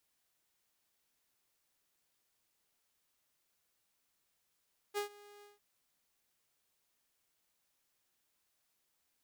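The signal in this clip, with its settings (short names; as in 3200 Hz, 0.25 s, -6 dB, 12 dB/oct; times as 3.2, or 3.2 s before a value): ADSR saw 411 Hz, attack 37 ms, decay 0.107 s, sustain -22.5 dB, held 0.49 s, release 0.161 s -30 dBFS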